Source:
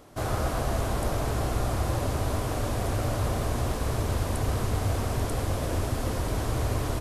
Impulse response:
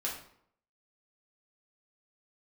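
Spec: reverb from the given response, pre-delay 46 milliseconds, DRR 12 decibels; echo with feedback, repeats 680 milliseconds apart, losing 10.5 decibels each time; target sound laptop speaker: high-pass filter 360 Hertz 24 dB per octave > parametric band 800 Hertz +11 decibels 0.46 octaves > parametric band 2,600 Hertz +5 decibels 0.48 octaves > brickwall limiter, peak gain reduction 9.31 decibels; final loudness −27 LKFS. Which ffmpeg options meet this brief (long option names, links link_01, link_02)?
-filter_complex "[0:a]aecho=1:1:680|1360|2040:0.299|0.0896|0.0269,asplit=2[link_01][link_02];[1:a]atrim=start_sample=2205,adelay=46[link_03];[link_02][link_03]afir=irnorm=-1:irlink=0,volume=-15.5dB[link_04];[link_01][link_04]amix=inputs=2:normalize=0,highpass=frequency=360:width=0.5412,highpass=frequency=360:width=1.3066,equalizer=frequency=800:width_type=o:width=0.46:gain=11,equalizer=frequency=2600:width_type=o:width=0.48:gain=5,volume=6dB,alimiter=limit=-18.5dB:level=0:latency=1"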